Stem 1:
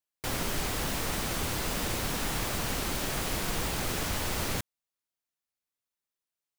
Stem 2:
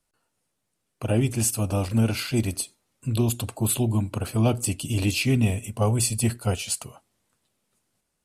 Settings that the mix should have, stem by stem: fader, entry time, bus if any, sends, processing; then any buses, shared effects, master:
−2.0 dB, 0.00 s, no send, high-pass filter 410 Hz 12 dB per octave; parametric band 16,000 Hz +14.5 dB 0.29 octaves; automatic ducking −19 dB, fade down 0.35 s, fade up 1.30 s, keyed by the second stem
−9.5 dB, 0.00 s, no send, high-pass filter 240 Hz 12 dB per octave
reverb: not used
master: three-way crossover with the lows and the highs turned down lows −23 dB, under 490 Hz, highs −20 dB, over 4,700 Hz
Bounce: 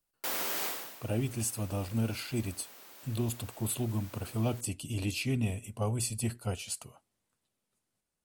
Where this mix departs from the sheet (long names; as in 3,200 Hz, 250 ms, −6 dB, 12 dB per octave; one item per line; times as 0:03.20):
stem 2: missing high-pass filter 240 Hz 12 dB per octave
master: missing three-way crossover with the lows and the highs turned down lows −23 dB, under 490 Hz, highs −20 dB, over 4,700 Hz